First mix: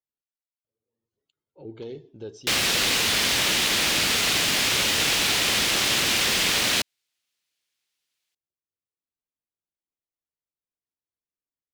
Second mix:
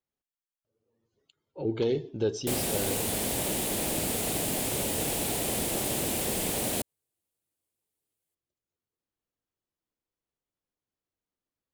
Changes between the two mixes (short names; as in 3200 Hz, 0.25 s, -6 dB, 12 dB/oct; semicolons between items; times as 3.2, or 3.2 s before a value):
speech +10.0 dB; background: add band shelf 2600 Hz -16 dB 2.9 oct